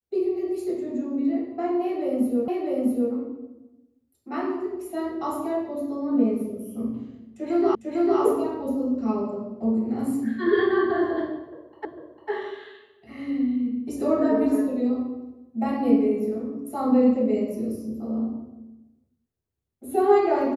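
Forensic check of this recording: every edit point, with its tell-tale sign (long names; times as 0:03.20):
0:02.48: the same again, the last 0.65 s
0:07.75: the same again, the last 0.45 s
0:11.85: the same again, the last 0.45 s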